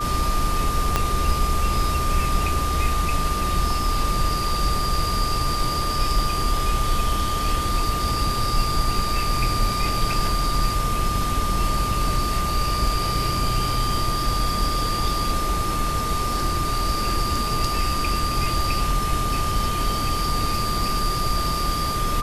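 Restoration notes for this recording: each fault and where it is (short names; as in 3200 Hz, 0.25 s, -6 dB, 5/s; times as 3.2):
tone 1200 Hz -25 dBFS
0.96 pop -5 dBFS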